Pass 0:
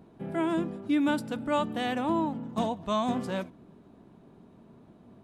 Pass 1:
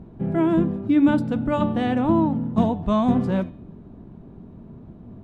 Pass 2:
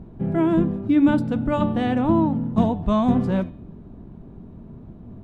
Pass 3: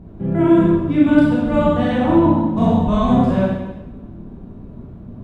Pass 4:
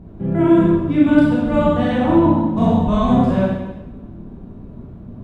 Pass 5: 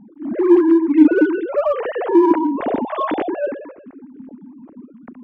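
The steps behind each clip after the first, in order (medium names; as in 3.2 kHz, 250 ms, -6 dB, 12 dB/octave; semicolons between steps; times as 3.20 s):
RIAA curve playback; de-hum 146 Hz, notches 31; trim +4 dB
bass shelf 66 Hz +6.5 dB
reverberation RT60 1.1 s, pre-delay 24 ms, DRR -6.5 dB; trim -1.5 dB
no audible change
formants replaced by sine waves; in parallel at -10 dB: hard clipper -14 dBFS, distortion -6 dB; on the sum: trim -2.5 dB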